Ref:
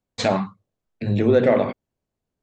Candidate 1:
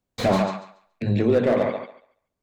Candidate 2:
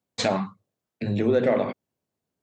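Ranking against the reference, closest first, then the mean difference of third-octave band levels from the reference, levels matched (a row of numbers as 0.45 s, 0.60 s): 2, 1; 1.5 dB, 4.5 dB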